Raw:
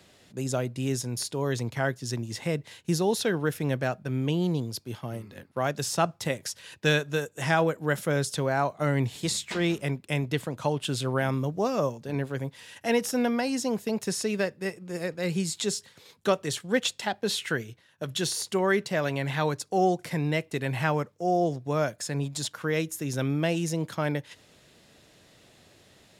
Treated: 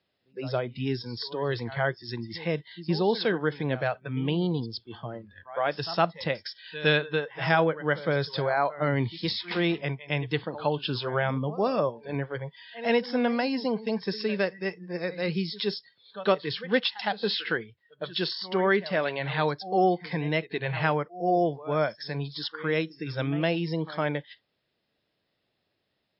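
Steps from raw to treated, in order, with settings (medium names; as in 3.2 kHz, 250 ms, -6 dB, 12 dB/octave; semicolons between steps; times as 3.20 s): bass shelf 170 Hz -5 dB; pre-echo 111 ms -14.5 dB; spectral noise reduction 21 dB; trim +2 dB; MP3 40 kbps 12 kHz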